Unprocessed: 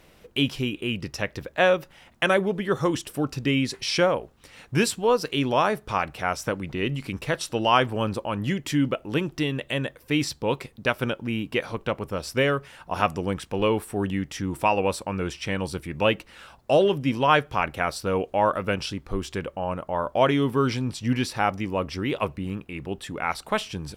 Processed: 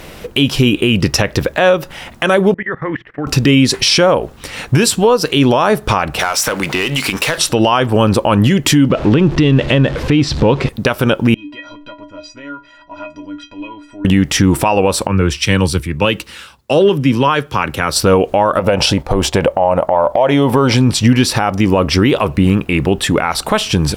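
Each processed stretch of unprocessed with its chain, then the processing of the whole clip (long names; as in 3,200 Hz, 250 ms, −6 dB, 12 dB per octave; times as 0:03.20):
0:02.54–0:03.27: transistor ladder low-pass 2,000 Hz, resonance 80% + mains-hum notches 60/120/180 Hz + output level in coarse steps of 20 dB
0:06.19–0:07.38: high-pass filter 1,100 Hz 6 dB per octave + downward compressor 12 to 1, threshold −35 dBFS + power curve on the samples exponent 0.7
0:08.90–0:10.69: converter with a step at zero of −38.5 dBFS + low-pass filter 4,000 Hz + low-shelf EQ 330 Hz +6.5 dB
0:11.34–0:14.05: downward compressor 2.5 to 1, threshold −33 dBFS + low-pass filter 4,900 Hz 24 dB per octave + stiff-string resonator 290 Hz, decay 0.4 s, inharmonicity 0.03
0:15.07–0:17.96: high-pass filter 44 Hz 24 dB per octave + parametric band 680 Hz −9.5 dB 0.44 octaves + multiband upward and downward expander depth 100%
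0:18.59–0:20.75: noise gate −43 dBFS, range −6 dB + flat-topped bell 690 Hz +10.5 dB 1.1 octaves + downward compressor 4 to 1, threshold −29 dBFS
whole clip: dynamic equaliser 2,100 Hz, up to −4 dB, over −40 dBFS, Q 2.4; downward compressor 6 to 1, threshold −26 dBFS; boost into a limiter +22 dB; level −1 dB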